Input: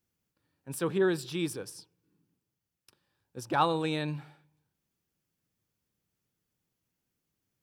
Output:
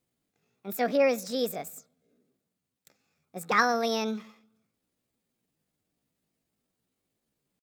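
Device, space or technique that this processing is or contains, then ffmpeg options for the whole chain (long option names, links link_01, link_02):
chipmunk voice: -af "asetrate=64194,aresample=44100,atempo=0.686977,volume=3dB"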